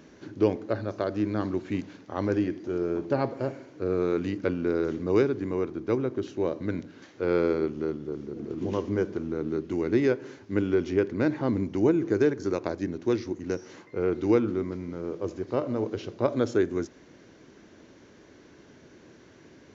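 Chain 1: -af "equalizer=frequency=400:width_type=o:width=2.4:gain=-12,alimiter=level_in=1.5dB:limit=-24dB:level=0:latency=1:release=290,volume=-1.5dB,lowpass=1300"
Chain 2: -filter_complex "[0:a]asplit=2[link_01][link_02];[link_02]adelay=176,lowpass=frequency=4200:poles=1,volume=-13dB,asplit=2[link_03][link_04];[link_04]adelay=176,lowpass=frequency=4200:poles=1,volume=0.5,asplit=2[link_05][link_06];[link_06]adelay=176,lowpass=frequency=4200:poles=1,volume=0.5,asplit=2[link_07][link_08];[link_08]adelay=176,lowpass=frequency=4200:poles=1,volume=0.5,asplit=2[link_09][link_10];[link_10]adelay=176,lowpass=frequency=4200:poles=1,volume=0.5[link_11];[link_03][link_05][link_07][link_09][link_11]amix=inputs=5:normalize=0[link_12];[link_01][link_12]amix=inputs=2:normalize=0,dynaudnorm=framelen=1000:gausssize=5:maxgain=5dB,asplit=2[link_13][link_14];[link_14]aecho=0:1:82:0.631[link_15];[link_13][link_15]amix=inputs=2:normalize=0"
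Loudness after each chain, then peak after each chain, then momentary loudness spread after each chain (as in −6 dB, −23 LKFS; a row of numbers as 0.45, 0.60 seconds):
−40.5, −22.0 LKFS; −25.5, −4.0 dBFS; 6, 10 LU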